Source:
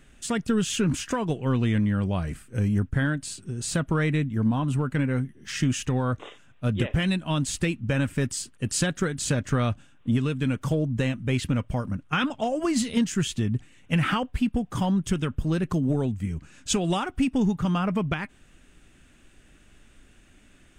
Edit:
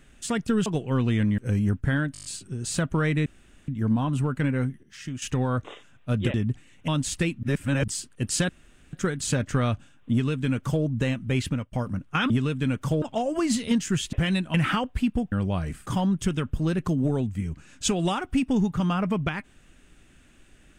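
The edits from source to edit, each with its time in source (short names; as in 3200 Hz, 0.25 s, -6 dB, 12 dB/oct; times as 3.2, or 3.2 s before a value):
0.66–1.21 cut
1.93–2.47 move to 14.71
3.22 stutter 0.02 s, 7 plays
4.23 insert room tone 0.42 s
5.38–5.77 gain -10.5 dB
6.89–7.3 swap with 13.39–13.93
7.85–8.3 reverse
8.91 insert room tone 0.44 s
10.1–10.82 copy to 12.28
11.46–11.71 fade out, to -23.5 dB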